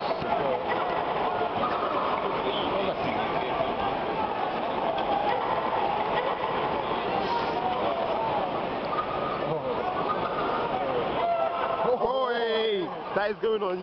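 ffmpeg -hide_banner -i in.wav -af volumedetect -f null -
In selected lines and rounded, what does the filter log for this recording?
mean_volume: -27.4 dB
max_volume: -13.5 dB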